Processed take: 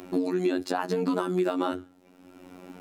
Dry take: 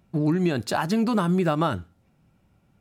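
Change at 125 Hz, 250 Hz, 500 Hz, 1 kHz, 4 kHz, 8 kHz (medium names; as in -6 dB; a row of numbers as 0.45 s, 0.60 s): -13.0 dB, -4.5 dB, 0.0 dB, -4.5 dB, -5.0 dB, -6.0 dB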